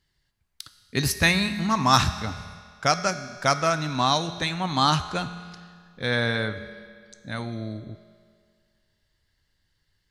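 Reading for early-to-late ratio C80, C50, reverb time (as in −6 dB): 12.5 dB, 11.5 dB, 2.0 s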